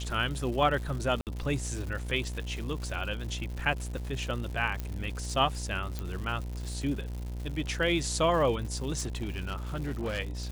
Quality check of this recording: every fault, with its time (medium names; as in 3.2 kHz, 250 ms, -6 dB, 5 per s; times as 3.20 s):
buzz 60 Hz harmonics 17 -36 dBFS
crackle 220 per s -37 dBFS
1.21–1.27 s: dropout 58 ms
4.80 s: pop -20 dBFS
5.99 s: pop -20 dBFS
8.98–10.20 s: clipped -28 dBFS